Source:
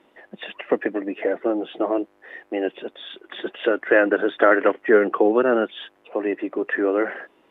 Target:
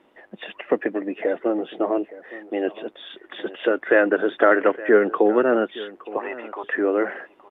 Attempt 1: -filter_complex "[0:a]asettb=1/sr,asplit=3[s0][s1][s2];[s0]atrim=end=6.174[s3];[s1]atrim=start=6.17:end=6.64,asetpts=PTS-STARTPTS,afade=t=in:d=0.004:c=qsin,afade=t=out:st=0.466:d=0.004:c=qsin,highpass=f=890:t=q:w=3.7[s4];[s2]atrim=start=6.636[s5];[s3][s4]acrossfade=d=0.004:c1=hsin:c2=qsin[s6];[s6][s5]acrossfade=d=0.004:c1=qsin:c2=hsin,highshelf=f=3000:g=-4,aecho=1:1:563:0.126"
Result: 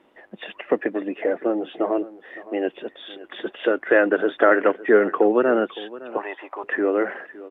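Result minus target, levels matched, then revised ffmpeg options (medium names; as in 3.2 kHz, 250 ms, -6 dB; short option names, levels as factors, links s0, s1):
echo 303 ms early
-filter_complex "[0:a]asettb=1/sr,asplit=3[s0][s1][s2];[s0]atrim=end=6.174[s3];[s1]atrim=start=6.17:end=6.64,asetpts=PTS-STARTPTS,afade=t=in:d=0.004:c=qsin,afade=t=out:st=0.466:d=0.004:c=qsin,highpass=f=890:t=q:w=3.7[s4];[s2]atrim=start=6.636[s5];[s3][s4]acrossfade=d=0.004:c1=hsin:c2=qsin[s6];[s6][s5]acrossfade=d=0.004:c1=qsin:c2=hsin,highshelf=f=3000:g=-4,aecho=1:1:866:0.126"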